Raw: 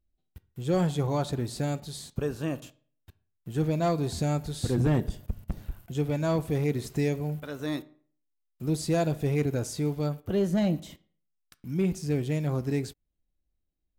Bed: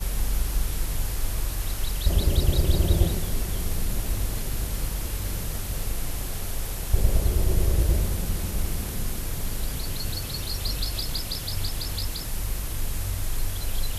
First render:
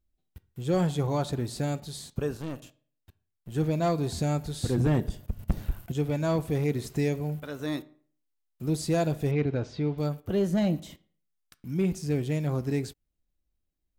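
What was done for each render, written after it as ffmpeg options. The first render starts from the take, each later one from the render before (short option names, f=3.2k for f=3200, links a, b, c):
-filter_complex "[0:a]asettb=1/sr,asplit=3[a][b][c];[a]atrim=end=2.374[d];[b]atrim=start=2.37:end=3.52,asetpts=PTS-STARTPTS,afade=t=in:d=0.004:c=qsin,afade=t=out:st=1.146:d=0.004:c=qsin,aeval=exprs='(tanh(31.6*val(0)+0.65)-tanh(0.65))/31.6':c=same[e];[c]atrim=start=3.516[f];[d][e]acrossfade=d=0.004:c1=hsin:c2=qsin[g];[g][f]acrossfade=d=0.004:c1=qsin:c2=hsin,asettb=1/sr,asplit=3[h][i][j];[h]atrim=end=5.394[k];[i]atrim=start=5.39:end=5.92,asetpts=PTS-STARTPTS,afade=t=in:d=0.004:c=qsin,afade=t=out:st=0.526:d=0.004:c=qsin,acontrast=59[l];[j]atrim=start=5.916[m];[k][l]acrossfade=d=0.004:c1=hsin:c2=qsin[n];[n][m]acrossfade=d=0.004:c1=qsin:c2=hsin,asettb=1/sr,asplit=3[o][p][q];[o]atrim=end=9.314[r];[p]atrim=start=9.31:end=9.98,asetpts=PTS-STARTPTS,afade=t=in:d=0.004:c=qsin,afade=t=out:st=0.666:d=0.004:c=qsin,lowpass=f=4.1k:w=0.5412,lowpass=f=4.1k:w=1.3066[s];[q]atrim=start=9.976[t];[r][s]acrossfade=d=0.004:c1=hsin:c2=qsin[u];[u][t]acrossfade=d=0.004:c1=qsin:c2=hsin"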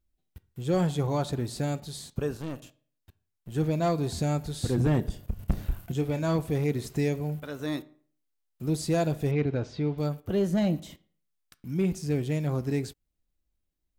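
-filter_complex "[0:a]asettb=1/sr,asplit=3[a][b][c];[a]atrim=end=5.124[d];[b]atrim=start=5.12:end=6.37,asetpts=PTS-STARTPTS,afade=t=in:d=0.004:c=qsin,afade=t=out:st=1.246:d=0.004:c=qsin,asplit=2[e][f];[f]adelay=30,volume=-10.5dB[g];[e][g]amix=inputs=2:normalize=0,atrim=end_sample=55125[h];[c]atrim=start=6.366[i];[d][h]acrossfade=d=0.004:c1=hsin:c2=qsin[j];[j][i]acrossfade=d=0.004:c1=qsin:c2=hsin"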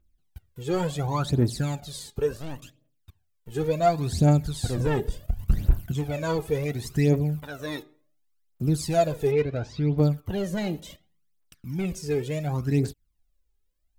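-af "volume=19dB,asoftclip=hard,volume=-19dB,aphaser=in_gain=1:out_gain=1:delay=2.5:decay=0.69:speed=0.7:type=triangular"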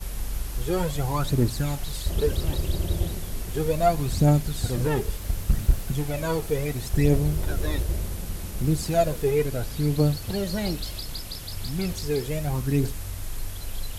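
-filter_complex "[1:a]volume=-5dB[a];[0:a][a]amix=inputs=2:normalize=0"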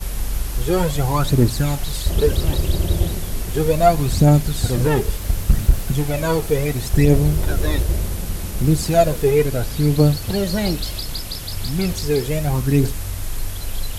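-af "volume=7dB,alimiter=limit=-3dB:level=0:latency=1"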